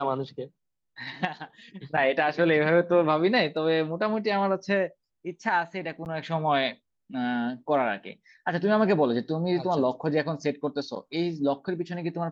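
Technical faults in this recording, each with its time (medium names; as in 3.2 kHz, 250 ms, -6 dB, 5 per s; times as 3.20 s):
6.05–6.06 s: dropout 9.3 ms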